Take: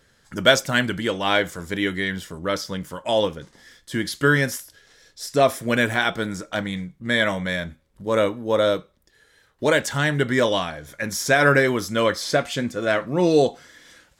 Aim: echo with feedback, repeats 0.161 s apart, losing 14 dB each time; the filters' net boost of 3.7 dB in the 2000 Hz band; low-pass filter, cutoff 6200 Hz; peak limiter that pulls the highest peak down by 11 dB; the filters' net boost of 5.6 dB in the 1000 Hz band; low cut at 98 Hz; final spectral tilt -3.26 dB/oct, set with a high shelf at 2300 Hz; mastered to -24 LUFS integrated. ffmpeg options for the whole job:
-af "highpass=98,lowpass=6.2k,equalizer=f=1k:t=o:g=8,equalizer=f=2k:t=o:g=3,highshelf=f=2.3k:g=-3.5,alimiter=limit=-8.5dB:level=0:latency=1,aecho=1:1:161|322:0.2|0.0399,volume=-1.5dB"

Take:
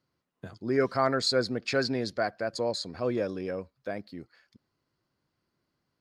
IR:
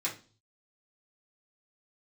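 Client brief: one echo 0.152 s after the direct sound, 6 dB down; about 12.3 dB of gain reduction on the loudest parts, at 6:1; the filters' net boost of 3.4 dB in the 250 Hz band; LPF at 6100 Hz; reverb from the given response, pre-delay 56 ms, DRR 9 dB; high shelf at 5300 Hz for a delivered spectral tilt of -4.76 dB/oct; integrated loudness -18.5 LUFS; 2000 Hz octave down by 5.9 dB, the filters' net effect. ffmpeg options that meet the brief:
-filter_complex "[0:a]lowpass=6.1k,equalizer=f=250:t=o:g=4,equalizer=f=2k:t=o:g=-8,highshelf=f=5.3k:g=-7.5,acompressor=threshold=-33dB:ratio=6,aecho=1:1:152:0.501,asplit=2[a][b];[1:a]atrim=start_sample=2205,adelay=56[c];[b][c]afir=irnorm=-1:irlink=0,volume=-13.5dB[d];[a][d]amix=inputs=2:normalize=0,volume=19dB"

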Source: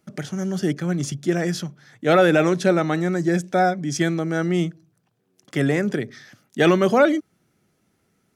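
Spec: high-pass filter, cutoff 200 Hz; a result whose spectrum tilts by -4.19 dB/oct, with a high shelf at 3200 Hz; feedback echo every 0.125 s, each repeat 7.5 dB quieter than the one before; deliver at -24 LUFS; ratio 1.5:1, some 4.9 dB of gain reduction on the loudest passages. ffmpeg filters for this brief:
-af "highpass=200,highshelf=f=3.2k:g=8,acompressor=threshold=-25dB:ratio=1.5,aecho=1:1:125|250|375|500|625:0.422|0.177|0.0744|0.0312|0.0131,volume=0.5dB"

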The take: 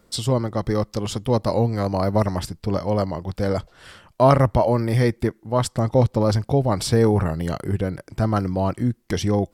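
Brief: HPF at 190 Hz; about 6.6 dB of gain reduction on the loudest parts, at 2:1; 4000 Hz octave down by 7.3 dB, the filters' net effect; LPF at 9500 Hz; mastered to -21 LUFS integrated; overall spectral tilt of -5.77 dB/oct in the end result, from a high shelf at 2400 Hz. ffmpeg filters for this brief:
-af "highpass=190,lowpass=9.5k,highshelf=f=2.4k:g=-5.5,equalizer=f=4k:t=o:g=-4,acompressor=threshold=-23dB:ratio=2,volume=7dB"

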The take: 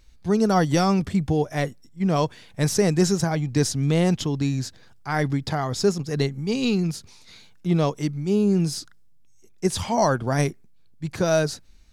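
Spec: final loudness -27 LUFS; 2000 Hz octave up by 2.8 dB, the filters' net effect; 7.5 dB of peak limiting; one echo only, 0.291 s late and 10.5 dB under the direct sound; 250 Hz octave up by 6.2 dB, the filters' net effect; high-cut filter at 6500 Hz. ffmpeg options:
-af "lowpass=6.5k,equalizer=f=250:t=o:g=9,equalizer=f=2k:t=o:g=3.5,alimiter=limit=-12dB:level=0:latency=1,aecho=1:1:291:0.299,volume=-5dB"

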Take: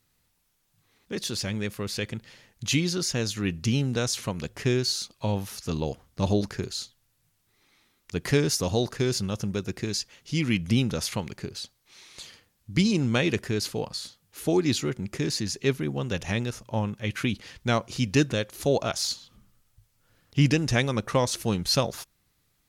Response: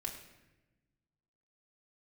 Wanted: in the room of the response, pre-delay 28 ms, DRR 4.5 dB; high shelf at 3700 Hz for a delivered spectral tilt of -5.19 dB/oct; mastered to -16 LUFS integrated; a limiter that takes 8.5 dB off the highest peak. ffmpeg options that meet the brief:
-filter_complex "[0:a]highshelf=f=3.7k:g=-5,alimiter=limit=-18dB:level=0:latency=1,asplit=2[a][b];[1:a]atrim=start_sample=2205,adelay=28[c];[b][c]afir=irnorm=-1:irlink=0,volume=-4dB[d];[a][d]amix=inputs=2:normalize=0,volume=13dB"

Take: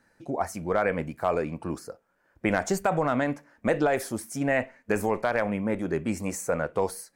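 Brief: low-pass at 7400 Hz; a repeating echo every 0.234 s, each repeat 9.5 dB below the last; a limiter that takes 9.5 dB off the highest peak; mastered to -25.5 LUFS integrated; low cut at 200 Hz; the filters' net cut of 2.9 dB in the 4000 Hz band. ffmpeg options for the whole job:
-af "highpass=200,lowpass=7.4k,equalizer=f=4k:t=o:g=-3.5,alimiter=limit=-21dB:level=0:latency=1,aecho=1:1:234|468|702|936:0.335|0.111|0.0365|0.012,volume=7dB"

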